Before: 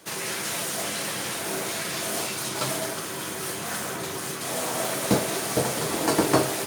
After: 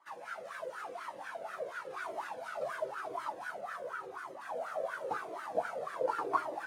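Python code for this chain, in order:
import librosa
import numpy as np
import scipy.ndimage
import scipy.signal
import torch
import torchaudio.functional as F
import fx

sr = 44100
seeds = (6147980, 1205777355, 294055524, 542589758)

y = fx.reverse_delay(x, sr, ms=523, wet_db=-2.5, at=(1.38, 3.61))
y = fx.high_shelf(y, sr, hz=11000.0, db=9.5)
y = y + 10.0 ** (-9.5 / 20.0) * np.pad(y, (int(438 * sr / 1000.0), 0))[:len(y)]
y = fx.wah_lfo(y, sr, hz=4.1, low_hz=500.0, high_hz=1500.0, q=7.7)
y = fx.low_shelf(y, sr, hz=110.0, db=4.0)
y = fx.comb_cascade(y, sr, direction='falling', hz=0.93)
y = y * 10.0 ** (5.0 / 20.0)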